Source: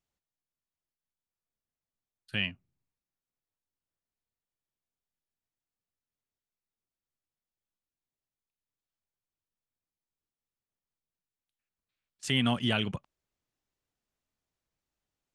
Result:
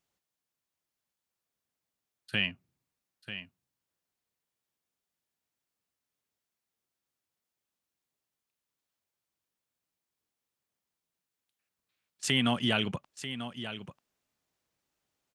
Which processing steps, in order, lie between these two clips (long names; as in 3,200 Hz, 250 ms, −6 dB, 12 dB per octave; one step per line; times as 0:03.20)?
in parallel at +2.5 dB: downward compressor, threshold −35 dBFS, peak gain reduction 12.5 dB
on the sum: high-pass filter 150 Hz 6 dB per octave
single-tap delay 941 ms −11 dB
level −1.5 dB